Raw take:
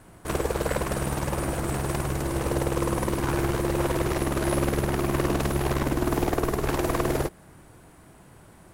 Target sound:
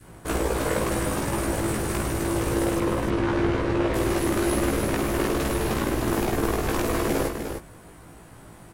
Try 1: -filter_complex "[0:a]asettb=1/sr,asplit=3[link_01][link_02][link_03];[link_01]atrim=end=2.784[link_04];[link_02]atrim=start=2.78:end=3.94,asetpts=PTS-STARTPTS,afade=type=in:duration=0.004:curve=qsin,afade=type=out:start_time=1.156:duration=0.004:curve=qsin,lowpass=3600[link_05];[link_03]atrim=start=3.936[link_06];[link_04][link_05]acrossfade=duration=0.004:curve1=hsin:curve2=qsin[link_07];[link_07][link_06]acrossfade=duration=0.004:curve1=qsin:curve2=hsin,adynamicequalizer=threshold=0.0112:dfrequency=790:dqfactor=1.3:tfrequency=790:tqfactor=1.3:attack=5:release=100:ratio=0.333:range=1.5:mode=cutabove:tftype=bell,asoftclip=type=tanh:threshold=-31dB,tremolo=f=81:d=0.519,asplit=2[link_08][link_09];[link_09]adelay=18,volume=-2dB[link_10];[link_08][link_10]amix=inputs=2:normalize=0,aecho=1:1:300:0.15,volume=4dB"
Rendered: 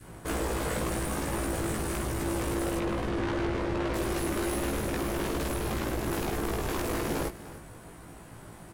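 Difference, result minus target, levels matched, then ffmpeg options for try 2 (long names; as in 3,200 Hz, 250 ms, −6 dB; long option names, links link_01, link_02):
soft clipping: distortion +11 dB; echo-to-direct −9.5 dB
-filter_complex "[0:a]asettb=1/sr,asplit=3[link_01][link_02][link_03];[link_01]atrim=end=2.784[link_04];[link_02]atrim=start=2.78:end=3.94,asetpts=PTS-STARTPTS,afade=type=in:duration=0.004:curve=qsin,afade=type=out:start_time=1.156:duration=0.004:curve=qsin,lowpass=3600[link_05];[link_03]atrim=start=3.936[link_06];[link_04][link_05]acrossfade=duration=0.004:curve1=hsin:curve2=qsin[link_07];[link_07][link_06]acrossfade=duration=0.004:curve1=qsin:curve2=hsin,adynamicequalizer=threshold=0.0112:dfrequency=790:dqfactor=1.3:tfrequency=790:tqfactor=1.3:attack=5:release=100:ratio=0.333:range=1.5:mode=cutabove:tftype=bell,asoftclip=type=tanh:threshold=-19.5dB,tremolo=f=81:d=0.519,asplit=2[link_08][link_09];[link_09]adelay=18,volume=-2dB[link_10];[link_08][link_10]amix=inputs=2:normalize=0,aecho=1:1:300:0.447,volume=4dB"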